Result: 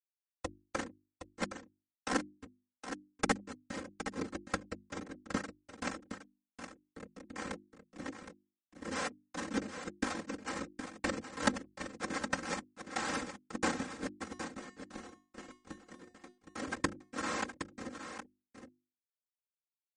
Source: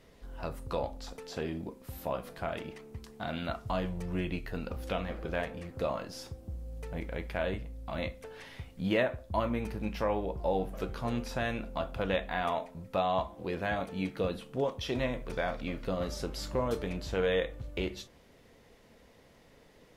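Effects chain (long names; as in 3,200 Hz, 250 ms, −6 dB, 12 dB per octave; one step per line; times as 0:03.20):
parametric band 3,500 Hz −3.5 dB 2 octaves
comparator with hysteresis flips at −27.5 dBFS
compressor whose output falls as the input rises −43 dBFS, ratio −0.5
cochlear-implant simulation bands 3
0:14.24–0:16.38: tuned comb filter 360 Hz, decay 0.37 s, harmonics all, mix 80%
mains-hum notches 50/100/150/200/250/300/350 Hz
comb filter 3.8 ms, depth 89%
on a send: single-tap delay 766 ms −9.5 dB
on the sum: level +11 dB
MP3 40 kbit/s 44,100 Hz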